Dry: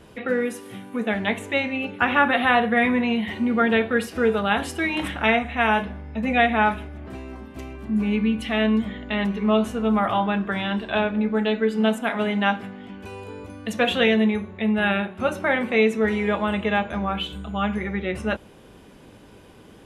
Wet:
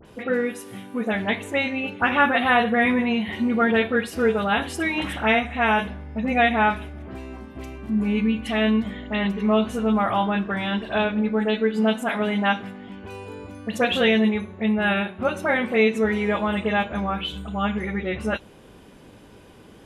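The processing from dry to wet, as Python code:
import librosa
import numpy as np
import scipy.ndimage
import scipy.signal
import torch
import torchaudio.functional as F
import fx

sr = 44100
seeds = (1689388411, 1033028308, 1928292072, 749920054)

y = fx.dispersion(x, sr, late='highs', ms=54.0, hz=2300.0)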